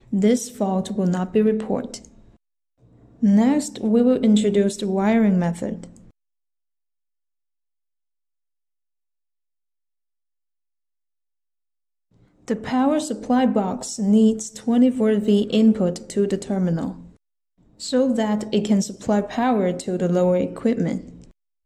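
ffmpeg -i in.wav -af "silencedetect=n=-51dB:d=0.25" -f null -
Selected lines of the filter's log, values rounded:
silence_start: 2.36
silence_end: 2.82 | silence_duration: 0.46
silence_start: 6.11
silence_end: 12.15 | silence_duration: 6.05
silence_start: 17.16
silence_end: 17.59 | silence_duration: 0.42
silence_start: 21.31
silence_end: 21.66 | silence_duration: 0.34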